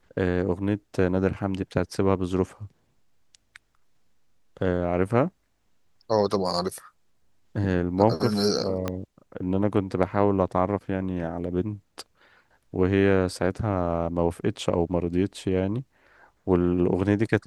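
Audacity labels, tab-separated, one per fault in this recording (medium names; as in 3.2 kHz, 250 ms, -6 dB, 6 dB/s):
8.880000	8.880000	pop -13 dBFS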